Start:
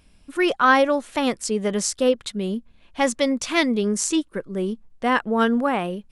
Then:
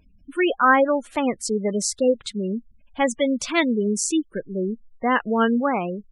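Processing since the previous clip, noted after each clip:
gate on every frequency bin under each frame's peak −20 dB strong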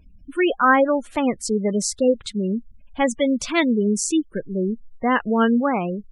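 low-shelf EQ 170 Hz +8 dB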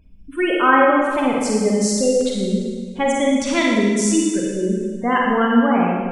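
four-comb reverb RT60 1.6 s, DRR −3 dB
level −1 dB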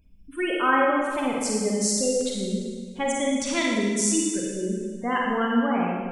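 high-shelf EQ 4,500 Hz +9 dB
level −7.5 dB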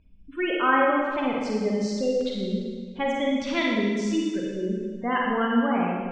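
low-pass filter 4,200 Hz 24 dB per octave

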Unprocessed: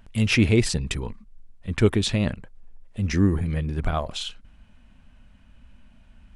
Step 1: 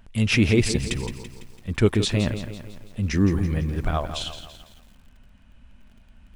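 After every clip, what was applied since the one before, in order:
feedback echo at a low word length 167 ms, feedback 55%, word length 8 bits, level −10 dB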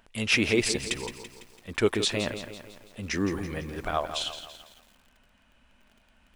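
bass and treble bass −15 dB, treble 0 dB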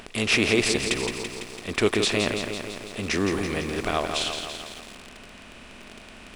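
compressor on every frequency bin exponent 0.6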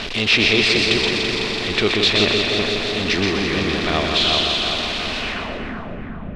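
converter with a step at zero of −24.5 dBFS
low-pass filter sweep 4,000 Hz → 160 Hz, 0:05.19–0:05.80
echo with a time of its own for lows and highs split 1,900 Hz, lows 375 ms, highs 125 ms, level −3.5 dB

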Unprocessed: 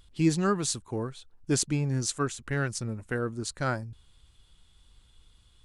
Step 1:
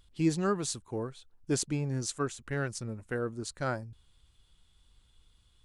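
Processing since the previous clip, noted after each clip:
dynamic equaliser 540 Hz, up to +4 dB, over −39 dBFS, Q 0.89
level −5 dB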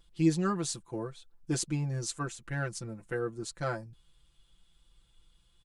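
comb filter 5.9 ms, depth 95%
level −3.5 dB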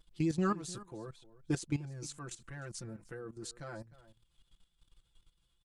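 output level in coarse steps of 15 dB
slap from a distant wall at 52 metres, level −18 dB
pitch vibrato 7.9 Hz 41 cents
level +1 dB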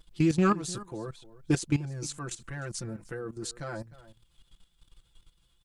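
loose part that buzzes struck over −37 dBFS, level −39 dBFS
level +7.5 dB

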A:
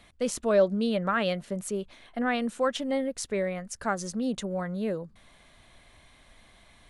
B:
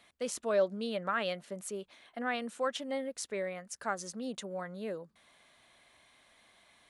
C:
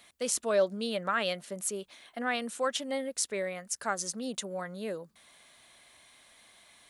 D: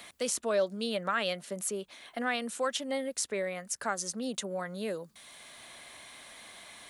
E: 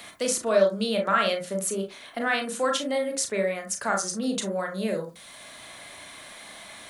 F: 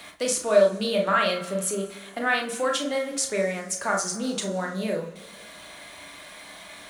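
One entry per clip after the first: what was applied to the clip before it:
high-pass filter 420 Hz 6 dB per octave; level −4.5 dB
high-shelf EQ 4,400 Hz +10 dB; level +2 dB
multiband upward and downward compressor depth 40%
convolution reverb RT60 0.25 s, pre-delay 27 ms, DRR 2 dB; level +4.5 dB
slack as between gear wheels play −48.5 dBFS; coupled-rooms reverb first 0.24 s, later 2.1 s, from −18 dB, DRR 5 dB

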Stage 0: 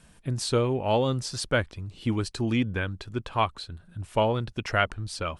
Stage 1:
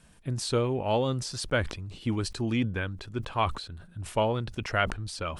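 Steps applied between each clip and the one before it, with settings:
level that may fall only so fast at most 94 dB per second
level −2.5 dB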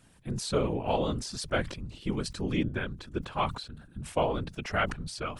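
random phases in short frames
level −2 dB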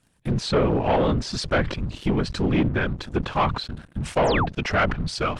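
leveller curve on the samples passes 3
sound drawn into the spectrogram fall, 0:04.24–0:04.46, 630–10,000 Hz −24 dBFS
treble cut that deepens with the level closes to 2,600 Hz, closed at −18.5 dBFS

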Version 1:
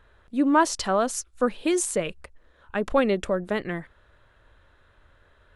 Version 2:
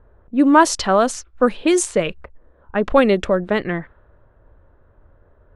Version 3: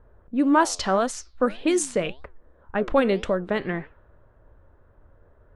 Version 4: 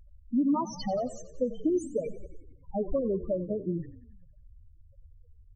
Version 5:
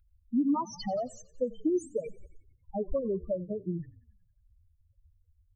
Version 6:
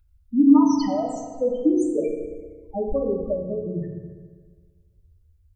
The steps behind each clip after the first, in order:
low-pass that shuts in the quiet parts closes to 710 Hz, open at −18.5 dBFS; level +7.5 dB
in parallel at 0 dB: downward compressor, threshold −23 dBFS, peak gain reduction 15 dB; on the sum: flanger 1.8 Hz, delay 6 ms, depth 6.9 ms, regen +85%; level −4 dB
downward compressor 16 to 1, threshold −24 dBFS, peak gain reduction 11.5 dB; spectral peaks only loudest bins 4; echo with shifted repeats 91 ms, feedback 63%, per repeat −32 Hz, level −16 dB; level +2 dB
spectral dynamics exaggerated over time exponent 1.5
feedback delay network reverb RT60 1.6 s, low-frequency decay 1×, high-frequency decay 0.5×, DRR 0 dB; level +4.5 dB

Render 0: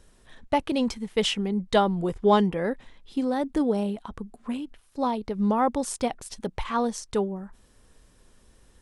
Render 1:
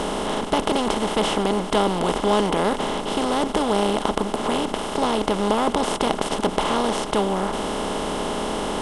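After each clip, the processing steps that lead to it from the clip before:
compressor on every frequency bin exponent 0.2
level −5 dB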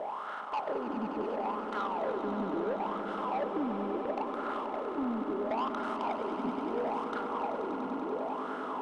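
LFO wah 0.73 Hz 250–1,400 Hz, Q 7.1
soft clipping −28.5 dBFS, distortion −13 dB
on a send: echo that builds up and dies away 96 ms, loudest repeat 5, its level −11.5 dB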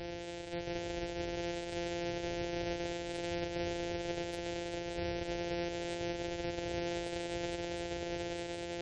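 samples sorted by size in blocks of 256 samples
gate on every frequency bin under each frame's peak −30 dB strong
phaser with its sweep stopped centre 470 Hz, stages 4
level +1.5 dB

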